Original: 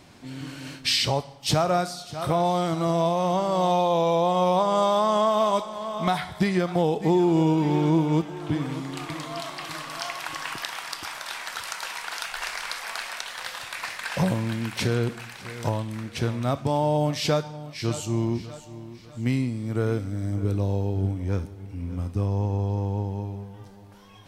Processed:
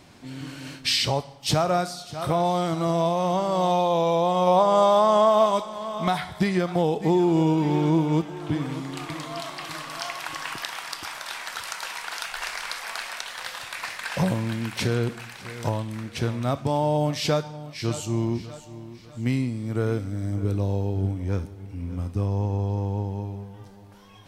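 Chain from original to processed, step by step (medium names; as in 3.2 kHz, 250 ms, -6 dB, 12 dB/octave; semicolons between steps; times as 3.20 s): 4.47–5.46 s: peaking EQ 680 Hz +4.5 dB 1.4 oct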